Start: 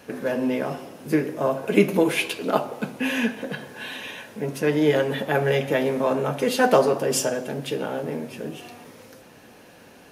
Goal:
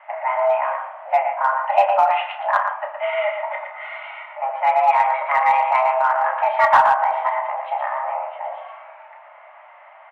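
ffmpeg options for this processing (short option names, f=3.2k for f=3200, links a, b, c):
-filter_complex "[0:a]asettb=1/sr,asplit=3[a][b][c];[a]atrim=end=2.664[d];[b]atrim=start=2.66:end=3.27,asetpts=PTS-STARTPTS,afade=t=in:d=0.004:c=qsin,afade=t=out:st=0.606:d=0.004:c=qsin,tremolo=f=21:d=0.333[e];[c]atrim=start=3.266[f];[d][e]acrossfade=d=0.004:c1=hsin:c2=qsin[g];[g][f]acrossfade=d=0.004:c1=qsin:c2=hsin,aecho=1:1:116:0.473,highpass=f=200:t=q:w=0.5412,highpass=f=200:t=q:w=1.307,lowpass=f=2k:t=q:w=0.5176,lowpass=f=2k:t=q:w=0.7071,lowpass=f=2k:t=q:w=1.932,afreqshift=390,asplit=2[h][i];[i]adelay=31,volume=-8dB[j];[h][j]amix=inputs=2:normalize=0,asplit=2[k][l];[l]asoftclip=type=hard:threshold=-14.5dB,volume=-6dB[m];[k][m]amix=inputs=2:normalize=0"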